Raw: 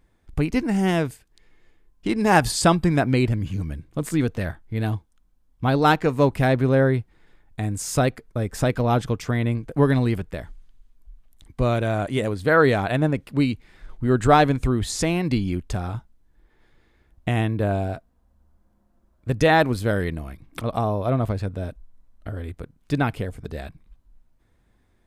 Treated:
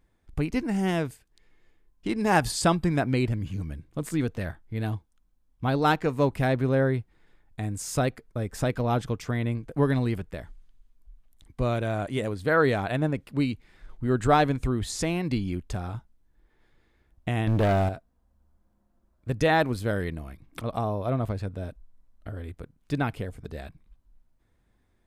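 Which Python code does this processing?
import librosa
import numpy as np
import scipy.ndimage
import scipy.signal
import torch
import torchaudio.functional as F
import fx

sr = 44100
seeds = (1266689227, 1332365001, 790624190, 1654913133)

y = fx.leveller(x, sr, passes=3, at=(17.47, 17.89))
y = y * librosa.db_to_amplitude(-5.0)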